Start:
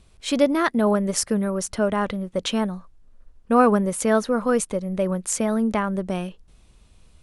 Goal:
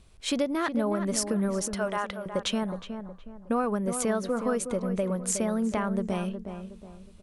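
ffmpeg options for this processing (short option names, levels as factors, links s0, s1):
-filter_complex "[0:a]asettb=1/sr,asplit=3[s0][s1][s2];[s0]atrim=end=1.754[s3];[s1]atrim=start=1.75:end=2.26,asetpts=PTS-STARTPTS,afade=t=in:d=0.004:c=qsin,afade=t=out:st=0.506:d=0.004:c=qsin,highpass=690[s4];[s2]atrim=start=2.256[s5];[s3][s4]acrossfade=d=0.004:c1=hsin:c2=qsin[s6];[s6][s5]acrossfade=d=0.004:c1=qsin:c2=hsin,acompressor=threshold=0.0794:ratio=5,asplit=2[s7][s8];[s8]adelay=366,lowpass=f=1600:p=1,volume=0.398,asplit=2[s9][s10];[s10]adelay=366,lowpass=f=1600:p=1,volume=0.37,asplit=2[s11][s12];[s12]adelay=366,lowpass=f=1600:p=1,volume=0.37,asplit=2[s13][s14];[s14]adelay=366,lowpass=f=1600:p=1,volume=0.37[s15];[s7][s9][s11][s13][s15]amix=inputs=5:normalize=0,volume=0.794"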